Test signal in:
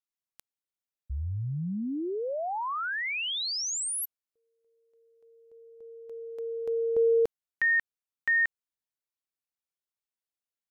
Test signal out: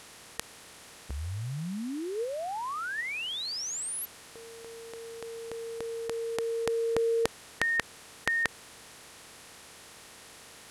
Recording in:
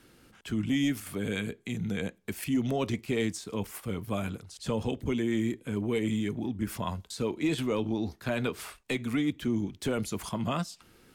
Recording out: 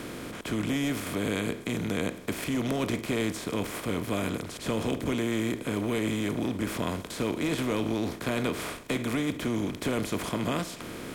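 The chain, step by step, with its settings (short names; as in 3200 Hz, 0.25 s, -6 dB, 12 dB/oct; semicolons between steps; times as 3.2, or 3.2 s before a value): per-bin compression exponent 0.4; gain -4.5 dB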